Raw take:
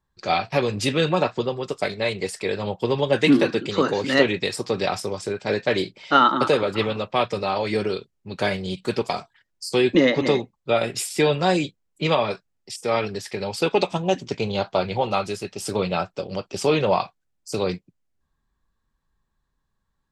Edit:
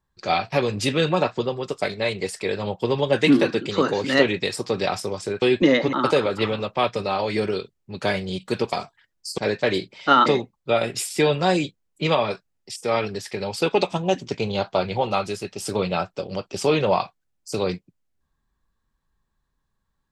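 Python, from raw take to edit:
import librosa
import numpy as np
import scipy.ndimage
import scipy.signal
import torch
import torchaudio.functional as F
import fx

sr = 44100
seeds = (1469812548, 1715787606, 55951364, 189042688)

y = fx.edit(x, sr, fx.swap(start_s=5.42, length_s=0.88, other_s=9.75, other_length_s=0.51), tone=tone)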